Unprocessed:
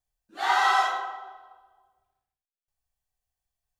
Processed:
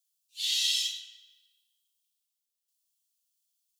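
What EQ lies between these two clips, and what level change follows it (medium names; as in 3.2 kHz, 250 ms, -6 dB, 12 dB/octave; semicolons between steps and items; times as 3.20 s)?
steep high-pass 2.8 kHz 48 dB/octave; tilt EQ +3.5 dB/octave; treble shelf 9.7 kHz -5.5 dB; +1.5 dB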